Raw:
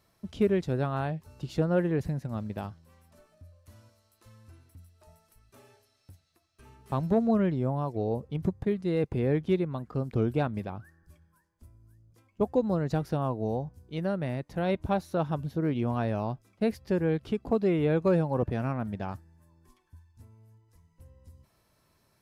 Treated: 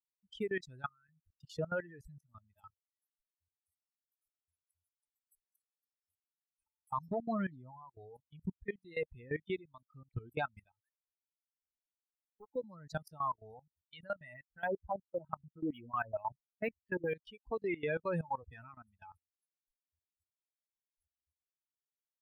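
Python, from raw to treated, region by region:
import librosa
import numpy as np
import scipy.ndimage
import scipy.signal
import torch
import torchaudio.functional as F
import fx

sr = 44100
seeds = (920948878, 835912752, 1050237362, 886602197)

y = fx.chain(x, sr, fx.high_shelf(hz=2800.0, db=-9.5),
    fx.over_compress(threshold_db=-37.0, ratio=-1.0),
    fx.fixed_phaser(hz=1900.0, stages=4), at=(0.87, 1.31))
y = fx.chain(y, sr, fx.level_steps(step_db=14),
    fx.quant_companded(bits=8),
    fx.doppler_dist(depth_ms=0.3), at=(10.69, 12.57))
y = fx.chain(y, sr, fx.high_shelf(hz=3400.0, db=-6.5),
    fx.filter_lfo_lowpass(shape='sine', hz=4.4, low_hz=380.0, high_hz=3300.0, q=1.7),
    fx.resample_linear(factor=3), at=(14.34, 17.15))
y = fx.bin_expand(y, sr, power=3.0)
y = fx.graphic_eq(y, sr, hz=(125, 250, 1000, 2000), db=(-8, -6, 6, 8))
y = fx.level_steps(y, sr, step_db=19)
y = F.gain(torch.from_numpy(y), 4.5).numpy()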